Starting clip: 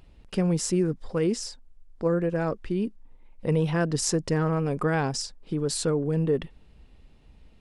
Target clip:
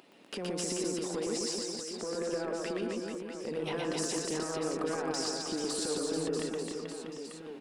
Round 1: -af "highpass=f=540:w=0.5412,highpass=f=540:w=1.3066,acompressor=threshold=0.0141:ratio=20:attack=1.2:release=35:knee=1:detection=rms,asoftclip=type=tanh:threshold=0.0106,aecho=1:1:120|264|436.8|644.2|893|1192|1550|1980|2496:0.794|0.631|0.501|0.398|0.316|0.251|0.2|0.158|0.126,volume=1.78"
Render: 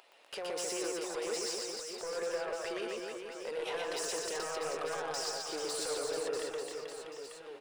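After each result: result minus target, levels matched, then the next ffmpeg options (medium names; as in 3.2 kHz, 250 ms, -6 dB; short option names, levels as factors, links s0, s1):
saturation: distortion +16 dB; 250 Hz band -8.5 dB
-af "highpass=f=540:w=0.5412,highpass=f=540:w=1.3066,acompressor=threshold=0.0141:ratio=20:attack=1.2:release=35:knee=1:detection=rms,asoftclip=type=tanh:threshold=0.0355,aecho=1:1:120|264|436.8|644.2|893|1192|1550|1980|2496:0.794|0.631|0.501|0.398|0.316|0.251|0.2|0.158|0.126,volume=1.78"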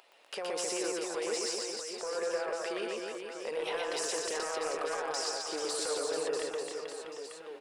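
250 Hz band -8.5 dB
-af "highpass=f=250:w=0.5412,highpass=f=250:w=1.3066,acompressor=threshold=0.0141:ratio=20:attack=1.2:release=35:knee=1:detection=rms,asoftclip=type=tanh:threshold=0.0355,aecho=1:1:120|264|436.8|644.2|893|1192|1550|1980|2496:0.794|0.631|0.501|0.398|0.316|0.251|0.2|0.158|0.126,volume=1.78"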